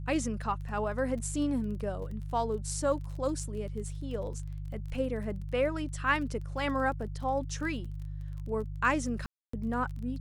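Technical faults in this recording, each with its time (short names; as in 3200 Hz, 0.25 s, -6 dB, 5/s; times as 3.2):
crackle 24/s -40 dBFS
hum 50 Hz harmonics 3 -38 dBFS
9.26–9.53 gap 0.274 s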